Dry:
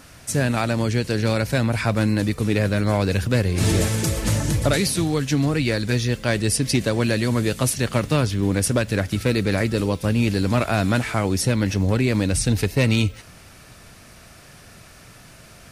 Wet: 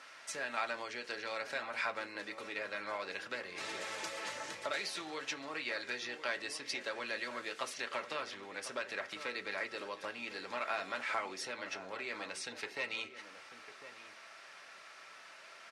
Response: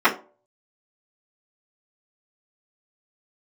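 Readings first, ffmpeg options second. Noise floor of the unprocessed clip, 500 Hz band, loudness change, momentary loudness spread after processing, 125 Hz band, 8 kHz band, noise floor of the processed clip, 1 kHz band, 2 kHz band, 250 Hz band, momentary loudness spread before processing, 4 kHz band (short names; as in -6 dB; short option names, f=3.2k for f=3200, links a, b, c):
-46 dBFS, -19.0 dB, -18.5 dB, 14 LU, under -40 dB, -20.5 dB, -55 dBFS, -11.0 dB, -10.5 dB, -30.0 dB, 2 LU, -13.5 dB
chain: -filter_complex "[0:a]equalizer=f=2.1k:t=o:w=0.77:g=2,acompressor=threshold=-24dB:ratio=6,highpass=770,lowpass=5k,asplit=2[a][b];[b]adelay=1050,volume=-11dB,highshelf=f=4k:g=-23.6[c];[a][c]amix=inputs=2:normalize=0,asplit=2[d][e];[1:a]atrim=start_sample=2205[f];[e][f]afir=irnorm=-1:irlink=0,volume=-24.5dB[g];[d][g]amix=inputs=2:normalize=0,volume=-6dB"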